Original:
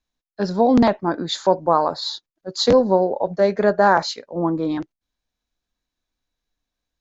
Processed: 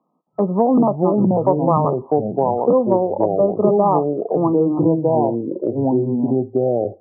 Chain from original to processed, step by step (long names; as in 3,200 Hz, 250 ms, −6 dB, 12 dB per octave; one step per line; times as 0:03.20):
brick-wall band-pass 150–1,300 Hz
delay with pitch and tempo change per echo 268 ms, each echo −4 semitones, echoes 2
multiband upward and downward compressor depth 70%